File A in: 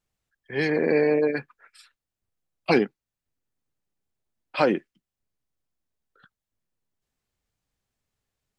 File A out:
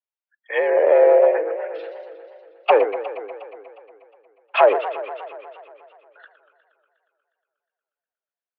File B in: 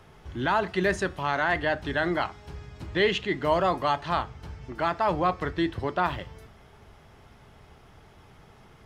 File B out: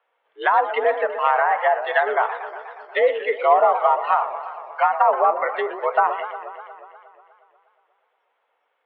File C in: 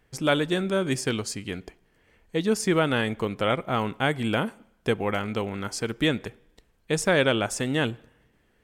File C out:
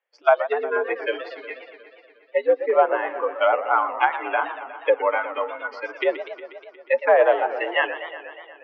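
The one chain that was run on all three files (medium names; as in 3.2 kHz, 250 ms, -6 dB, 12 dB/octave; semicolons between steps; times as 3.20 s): spectral noise reduction 25 dB; low-pass that closes with the level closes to 880 Hz, closed at -22 dBFS; in parallel at -4.5 dB: overload inside the chain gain 16 dB; on the sum: mistuned SSB +76 Hz 430–3200 Hz; modulated delay 120 ms, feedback 73%, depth 215 cents, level -12 dB; trim +6.5 dB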